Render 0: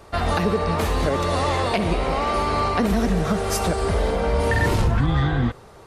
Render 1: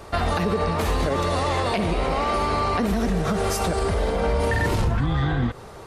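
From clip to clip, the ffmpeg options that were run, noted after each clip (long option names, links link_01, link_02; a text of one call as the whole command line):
ffmpeg -i in.wav -af "alimiter=limit=-19.5dB:level=0:latency=1:release=134,volume=5dB" out.wav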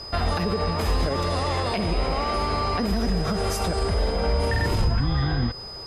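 ffmpeg -i in.wav -af "lowshelf=frequency=87:gain=6,aeval=exprs='val(0)+0.0224*sin(2*PI*5000*n/s)':channel_layout=same,volume=-3dB" out.wav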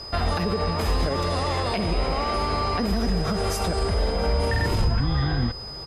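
ffmpeg -i in.wav -af "aecho=1:1:696:0.075" out.wav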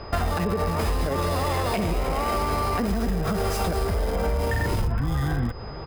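ffmpeg -i in.wav -filter_complex "[0:a]acrossover=split=3300[link_01][link_02];[link_02]acrusher=bits=3:dc=4:mix=0:aa=0.000001[link_03];[link_01][link_03]amix=inputs=2:normalize=0,acompressor=threshold=-26dB:ratio=6,volume=5dB" out.wav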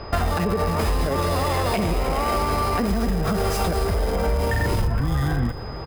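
ffmpeg -i in.wav -af "aecho=1:1:272|544|816|1088:0.119|0.057|0.0274|0.0131,volume=2.5dB" out.wav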